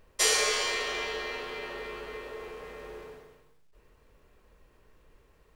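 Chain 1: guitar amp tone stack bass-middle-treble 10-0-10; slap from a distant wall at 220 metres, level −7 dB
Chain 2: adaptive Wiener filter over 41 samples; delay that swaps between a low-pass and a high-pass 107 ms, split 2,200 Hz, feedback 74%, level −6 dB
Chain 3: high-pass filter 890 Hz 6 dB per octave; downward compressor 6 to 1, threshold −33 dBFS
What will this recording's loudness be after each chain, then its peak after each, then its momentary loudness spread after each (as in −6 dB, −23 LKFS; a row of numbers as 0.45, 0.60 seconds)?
−31.0, −30.0, −37.5 LKFS; −12.5, −11.5, −21.0 dBFS; 23, 23, 15 LU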